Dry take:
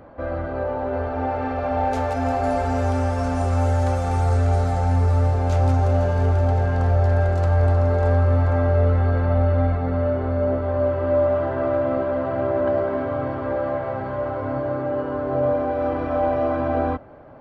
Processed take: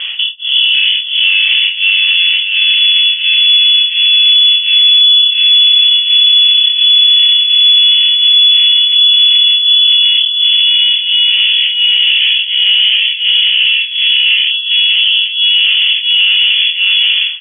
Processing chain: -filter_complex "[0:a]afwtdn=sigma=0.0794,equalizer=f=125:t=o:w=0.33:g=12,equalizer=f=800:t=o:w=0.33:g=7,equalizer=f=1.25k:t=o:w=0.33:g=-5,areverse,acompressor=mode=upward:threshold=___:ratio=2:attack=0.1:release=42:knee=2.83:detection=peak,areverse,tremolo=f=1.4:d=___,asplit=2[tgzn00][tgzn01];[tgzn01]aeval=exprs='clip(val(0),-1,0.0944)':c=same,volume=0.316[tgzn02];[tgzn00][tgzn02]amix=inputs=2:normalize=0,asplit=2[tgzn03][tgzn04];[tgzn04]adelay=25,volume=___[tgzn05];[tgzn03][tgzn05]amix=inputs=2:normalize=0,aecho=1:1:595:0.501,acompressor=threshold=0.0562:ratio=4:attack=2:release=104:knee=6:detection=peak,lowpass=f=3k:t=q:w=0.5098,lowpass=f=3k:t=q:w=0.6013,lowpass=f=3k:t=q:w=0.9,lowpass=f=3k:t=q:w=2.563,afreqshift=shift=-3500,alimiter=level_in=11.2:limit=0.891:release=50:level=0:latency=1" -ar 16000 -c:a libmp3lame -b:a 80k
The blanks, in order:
0.1, 1, 0.631